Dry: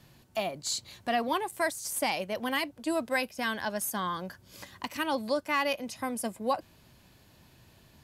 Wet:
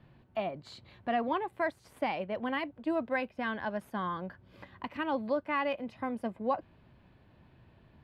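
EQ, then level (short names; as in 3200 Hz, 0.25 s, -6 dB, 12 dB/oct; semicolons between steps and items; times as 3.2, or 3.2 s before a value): air absorption 480 m; 0.0 dB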